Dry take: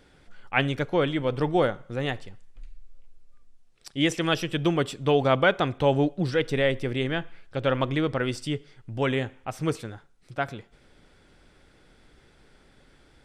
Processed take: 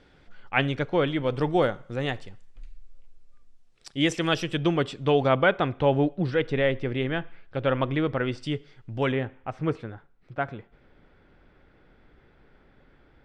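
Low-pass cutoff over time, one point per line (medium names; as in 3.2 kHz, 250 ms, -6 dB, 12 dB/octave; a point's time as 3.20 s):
4.9 kHz
from 1.26 s 8.6 kHz
from 4.58 s 5.1 kHz
from 5.29 s 3.1 kHz
from 8.43 s 5.2 kHz
from 9.12 s 2.2 kHz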